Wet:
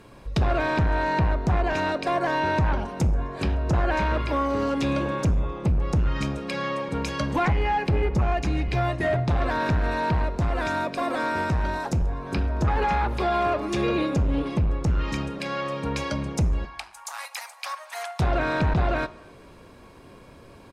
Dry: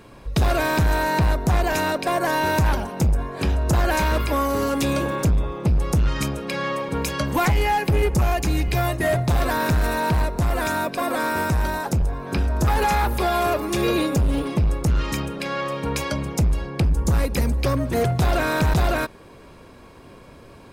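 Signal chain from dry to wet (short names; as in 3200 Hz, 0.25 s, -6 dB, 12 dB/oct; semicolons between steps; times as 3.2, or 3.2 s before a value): 16.65–18.2 steep high-pass 740 Hz 48 dB/oct; treble ducked by the level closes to 2400 Hz, closed at -15.5 dBFS; speakerphone echo 0.26 s, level -25 dB; reverb RT60 0.65 s, pre-delay 9 ms, DRR 15.5 dB; gain -3 dB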